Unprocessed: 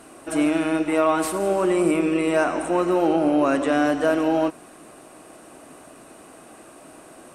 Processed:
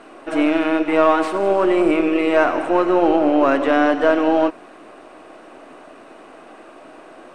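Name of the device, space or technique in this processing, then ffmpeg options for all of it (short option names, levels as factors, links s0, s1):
crystal radio: -af "highpass=280,lowpass=3400,aeval=exprs='if(lt(val(0),0),0.708*val(0),val(0))':c=same,volume=2.11"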